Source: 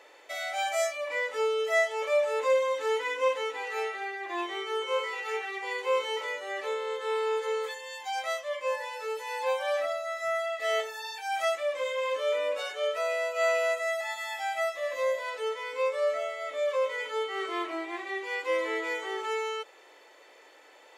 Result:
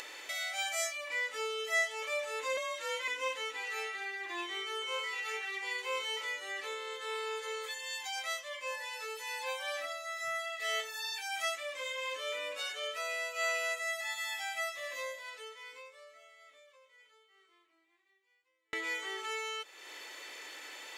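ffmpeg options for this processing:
-filter_complex "[0:a]asettb=1/sr,asplit=3[s0][s1][s2];[s0]atrim=end=2.574[s3];[s1]atrim=start=2.57:end=3.08,asetpts=PTS-STARTPTS,afade=t=in:d=0.004:c=qsin,afade=t=out:st=0.506:d=0.004:c=qsin,afreqshift=54[s4];[s2]atrim=start=3.076[s5];[s3][s4]acrossfade=d=0.004:c1=hsin:c2=qsin[s6];[s6][s5]acrossfade=d=0.004:c1=qsin:c2=hsin,asplit=2[s7][s8];[s7]atrim=end=18.73,asetpts=PTS-STARTPTS,afade=t=out:st=14.98:d=3.75:c=exp[s9];[s8]atrim=start=18.73,asetpts=PTS-STARTPTS,afade=t=in:d=0.004:c=hsin[s10];[s9][s10]concat=n=2:v=0:a=1,acompressor=mode=upward:threshold=0.0282:ratio=2.5,equalizer=f=580:t=o:w=2.4:g=-15,volume=1.26"

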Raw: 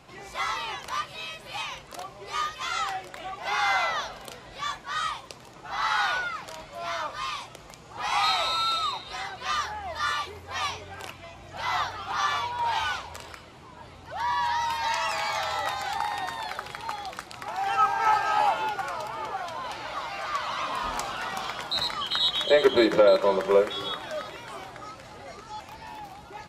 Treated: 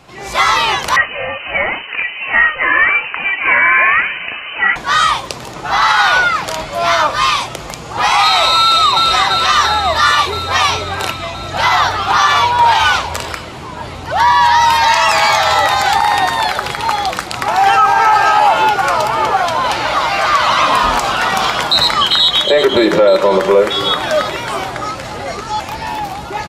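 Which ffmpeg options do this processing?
-filter_complex "[0:a]asettb=1/sr,asplit=3[s0][s1][s2];[s0]atrim=end=0.964[s3];[s1]atrim=start=0.96:end=4.76,asetpts=PTS-STARTPTS,afade=t=in:d=0.004:c=qsin,afade=t=out:st=3.796:d=0.004:c=qsin,lowpass=f=2600:t=q:w=0.5098,lowpass=f=2600:t=q:w=0.6013,lowpass=f=2600:t=q:w=0.9,lowpass=f=2600:t=q:w=2.563,afreqshift=-3100[s4];[s2]atrim=start=4.756[s5];[s3][s4]acrossfade=d=0.004:c1=hsin:c2=qsin[s6];[s6][s5]acrossfade=d=0.004:c1=qsin:c2=hsin,asplit=2[s7][s8];[s8]afade=t=in:st=8.62:d=0.01,afade=t=out:st=9.05:d=0.01,aecho=0:1:340|680|1020|1360|1700|2040|2380|2720|3060|3400|3740|4080:0.530884|0.398163|0.298622|0.223967|0.167975|0.125981|0.094486|0.0708645|0.0531484|0.0398613|0.029896|0.022422[s9];[s7][s9]amix=inputs=2:normalize=0,dynaudnorm=f=160:g=3:m=3.55,alimiter=level_in=2.99:limit=0.891:release=50:level=0:latency=1,volume=0.891"

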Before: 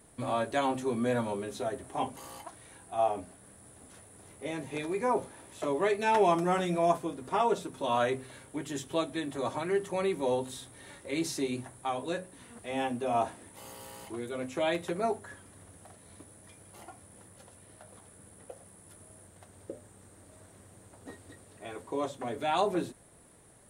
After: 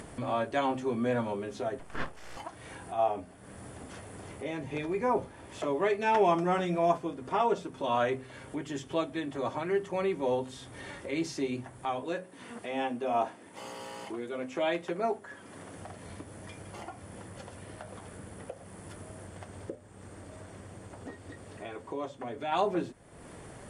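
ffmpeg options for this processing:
-filter_complex "[0:a]asettb=1/sr,asplit=3[s0][s1][s2];[s0]atrim=end=1.794[s3];[s1]atrim=start=1.79:end=2.37,asetpts=PTS-STARTPTS,afade=t=in:d=0.004:c=qsin,afade=t=out:st=0.576:d=0.004:c=qsin,aeval=exprs='abs(val(0))':c=same[s4];[s2]atrim=start=2.366[s5];[s3][s4]acrossfade=d=0.004:c1=hsin:c2=qsin[s6];[s6][s5]acrossfade=d=0.004:c1=qsin:c2=hsin,asettb=1/sr,asplit=3[s7][s8][s9];[s7]atrim=end=4.614[s10];[s8]atrim=start=4.61:end=5.47,asetpts=PTS-STARTPTS,afade=t=in:d=0.004:c=qsin,afade=t=out:st=0.856:d=0.004:c=qsin,lowshelf=f=96:g=11.5[s11];[s9]atrim=start=5.466[s12];[s10][s11]acrossfade=d=0.004:c1=hsin:c2=qsin[s13];[s13][s12]acrossfade=d=0.004:c1=qsin:c2=hsin,asettb=1/sr,asplit=3[s14][s15][s16];[s14]atrim=end=12.044[s17];[s15]atrim=start=12.04:end=15.78,asetpts=PTS-STARTPTS,afade=t=in:d=0.004:c=qsin,afade=t=out:st=3.736:d=0.004:c=qsin,highpass=180[s18];[s16]atrim=start=15.776[s19];[s17][s18]acrossfade=d=0.004:c1=hsin:c2=qsin[s20];[s20][s19]acrossfade=d=0.004:c1=qsin:c2=hsin,asplit=3[s21][s22][s23];[s21]atrim=end=19.752[s24];[s22]atrim=start=19.748:end=22.522,asetpts=PTS-STARTPTS,volume=0.631[s25];[s23]atrim=start=22.518[s26];[s24][s25]acrossfade=d=0.004:c1=hsin:c2=hsin[s27];[s27][s26]acrossfade=d=0.004:c1=hsin:c2=hsin,lowpass=5600,acompressor=mode=upward:threshold=0.02:ratio=2.5,bandreject=f=3900:w=7.7"

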